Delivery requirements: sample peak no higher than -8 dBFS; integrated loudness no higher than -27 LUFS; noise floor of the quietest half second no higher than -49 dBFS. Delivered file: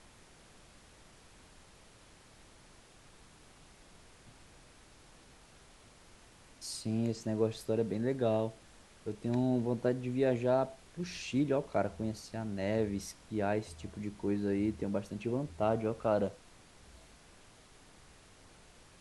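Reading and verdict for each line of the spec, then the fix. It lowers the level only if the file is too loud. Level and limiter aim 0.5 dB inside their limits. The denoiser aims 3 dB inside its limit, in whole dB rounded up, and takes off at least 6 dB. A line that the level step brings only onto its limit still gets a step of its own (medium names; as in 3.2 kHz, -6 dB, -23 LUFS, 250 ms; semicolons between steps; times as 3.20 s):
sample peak -17.0 dBFS: pass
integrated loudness -34.5 LUFS: pass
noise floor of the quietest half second -59 dBFS: pass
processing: none needed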